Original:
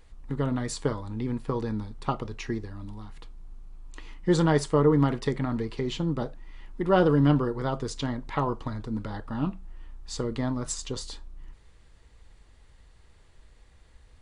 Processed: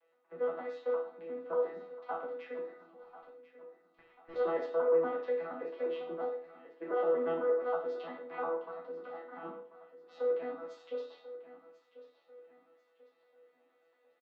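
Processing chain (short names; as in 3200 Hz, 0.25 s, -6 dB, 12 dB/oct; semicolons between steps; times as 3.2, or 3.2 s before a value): arpeggiated vocoder bare fifth, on E3, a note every 0.117 s; HPF 470 Hz 24 dB/oct; dynamic EQ 920 Hz, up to +4 dB, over -44 dBFS, Q 1; limiter -28.5 dBFS, peak gain reduction 12 dB; 3.03–4.36 tube stage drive 49 dB, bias 0.7; air absorption 360 m; feedback echo 1.041 s, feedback 38%, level -15.5 dB; reverb RT60 0.50 s, pre-delay 11 ms, DRR -4.5 dB; Opus 128 kbps 48000 Hz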